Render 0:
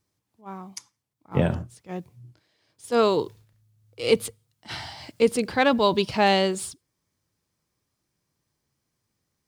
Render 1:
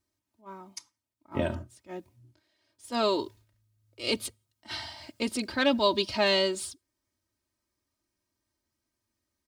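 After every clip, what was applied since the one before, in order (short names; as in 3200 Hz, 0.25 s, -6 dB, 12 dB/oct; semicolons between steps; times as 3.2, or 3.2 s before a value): dynamic EQ 4300 Hz, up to +6 dB, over -42 dBFS, Q 1.2; comb 3.2 ms, depth 83%; gain -7 dB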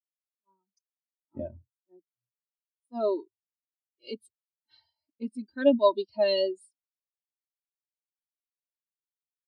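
high shelf 7000 Hz +8 dB; spectral expander 2.5:1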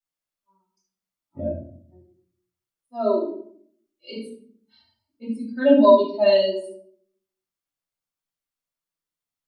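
reverb RT60 0.55 s, pre-delay 7 ms, DRR -6 dB; gain -2.5 dB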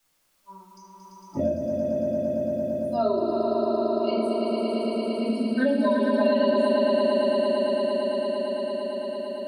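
compressor, threshold -21 dBFS, peak gain reduction 12.5 dB; on a send: swelling echo 0.113 s, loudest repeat 5, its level -4.5 dB; on the sum: three-band squash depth 70%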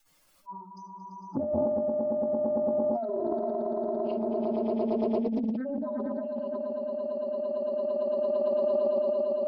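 spectral contrast raised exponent 1.9; negative-ratio compressor -29 dBFS, ratio -1; Doppler distortion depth 0.3 ms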